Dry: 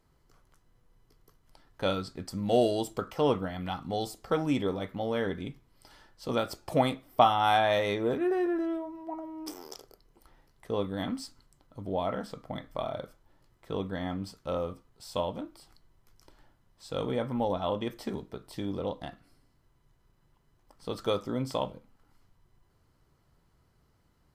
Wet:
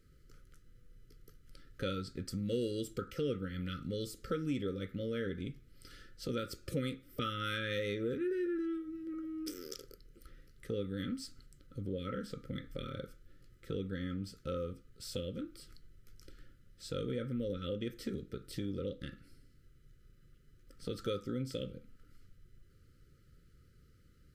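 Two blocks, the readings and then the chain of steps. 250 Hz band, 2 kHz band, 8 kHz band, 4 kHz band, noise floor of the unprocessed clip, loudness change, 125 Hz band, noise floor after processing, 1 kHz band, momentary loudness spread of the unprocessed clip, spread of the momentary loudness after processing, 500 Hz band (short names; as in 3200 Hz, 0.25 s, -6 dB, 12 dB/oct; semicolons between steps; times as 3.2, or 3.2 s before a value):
-5.5 dB, -7.0 dB, -3.5 dB, -6.5 dB, -68 dBFS, -8.0 dB, -3.0 dB, -64 dBFS, -18.0 dB, 16 LU, 13 LU, -9.0 dB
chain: brick-wall FIR band-stop 570–1200 Hz; low shelf 140 Hz +6 dB; compressor 2:1, threshold -41 dBFS, peak gain reduction 11 dB; gain +1 dB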